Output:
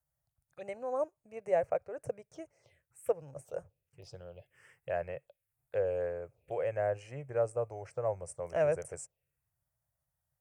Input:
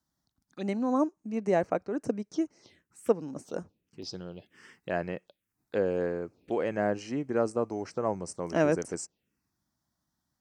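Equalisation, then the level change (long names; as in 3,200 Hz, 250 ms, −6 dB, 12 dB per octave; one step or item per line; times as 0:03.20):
drawn EQ curve 140 Hz 0 dB, 200 Hz −25 dB, 300 Hz −23 dB, 550 Hz +1 dB, 1,000 Hz −10 dB, 2,500 Hz −5 dB, 3,900 Hz −18 dB, 5,700 Hz −15 dB, 9,400 Hz 0 dB
0.0 dB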